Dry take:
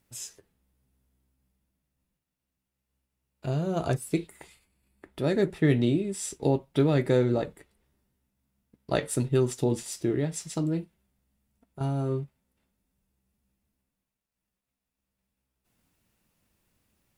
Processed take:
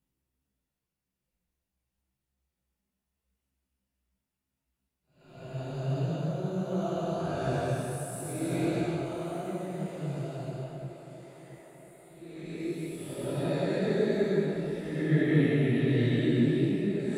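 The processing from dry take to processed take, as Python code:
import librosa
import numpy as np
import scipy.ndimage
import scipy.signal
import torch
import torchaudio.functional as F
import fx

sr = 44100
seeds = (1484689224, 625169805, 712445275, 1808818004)

p1 = fx.reverse_delay(x, sr, ms=576, wet_db=-5)
p2 = fx.paulstretch(p1, sr, seeds[0], factor=4.4, window_s=0.25, from_s=2.18)
p3 = p2 + fx.echo_tape(p2, sr, ms=337, feedback_pct=80, wet_db=-10.0, lp_hz=4000.0, drive_db=6.0, wow_cents=37, dry=0)
y = fx.detune_double(p3, sr, cents=51)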